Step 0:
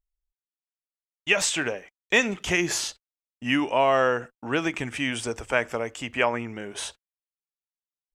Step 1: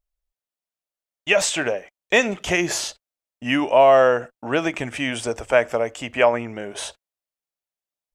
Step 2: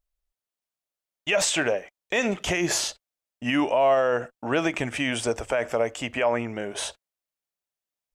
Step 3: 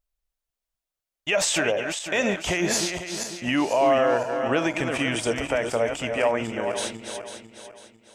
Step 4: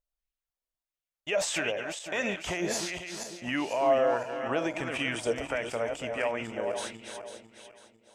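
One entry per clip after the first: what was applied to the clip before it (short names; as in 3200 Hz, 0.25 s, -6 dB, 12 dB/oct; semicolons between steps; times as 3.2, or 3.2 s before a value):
bell 620 Hz +8.5 dB 0.67 oct; gain +2 dB
limiter -13 dBFS, peak gain reduction 11 dB
regenerating reverse delay 0.249 s, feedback 60%, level -6.5 dB
LFO bell 1.5 Hz 480–2900 Hz +7 dB; gain -8.5 dB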